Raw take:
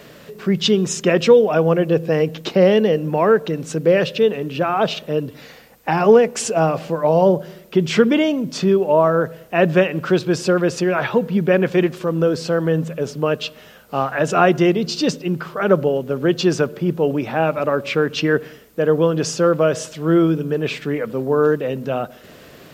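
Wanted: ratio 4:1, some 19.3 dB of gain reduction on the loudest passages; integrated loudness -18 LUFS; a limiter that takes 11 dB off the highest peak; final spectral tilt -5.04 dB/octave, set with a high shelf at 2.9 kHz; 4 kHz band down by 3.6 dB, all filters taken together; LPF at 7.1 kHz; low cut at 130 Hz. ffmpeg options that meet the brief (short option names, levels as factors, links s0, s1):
-af "highpass=130,lowpass=7100,highshelf=f=2900:g=4,equalizer=f=4000:t=o:g=-8,acompressor=threshold=0.0282:ratio=4,volume=7.5,alimiter=limit=0.398:level=0:latency=1"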